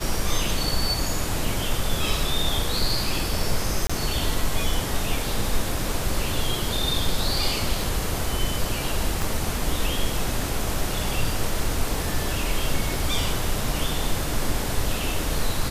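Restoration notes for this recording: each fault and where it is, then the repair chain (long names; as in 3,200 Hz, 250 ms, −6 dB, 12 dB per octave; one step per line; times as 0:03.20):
0:03.87–0:03.90: drop-out 25 ms
0:09.22: click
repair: click removal
repair the gap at 0:03.87, 25 ms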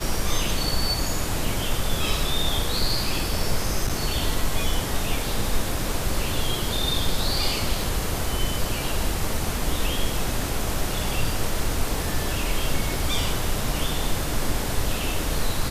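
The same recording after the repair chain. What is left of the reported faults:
0:09.22: click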